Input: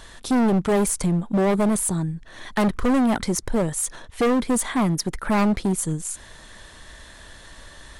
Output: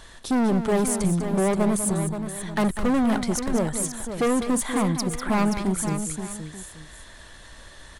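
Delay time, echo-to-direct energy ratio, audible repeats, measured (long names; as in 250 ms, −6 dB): 196 ms, −6.0 dB, 3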